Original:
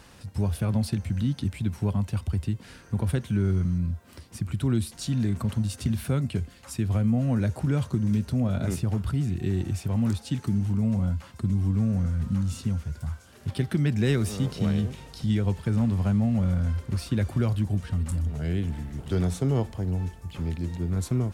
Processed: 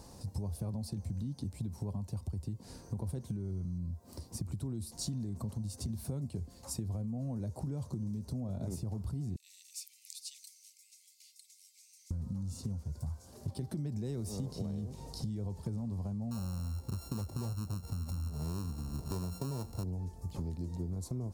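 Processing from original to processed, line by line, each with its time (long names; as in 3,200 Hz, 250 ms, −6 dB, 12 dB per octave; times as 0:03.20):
0:09.36–0:12.11: Butterworth high-pass 2,100 Hz 96 dB per octave
0:16.31–0:19.84: samples sorted by size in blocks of 32 samples
whole clip: flat-topped bell 2,100 Hz −15 dB; brickwall limiter −19.5 dBFS; downward compressor 12 to 1, threshold −34 dBFS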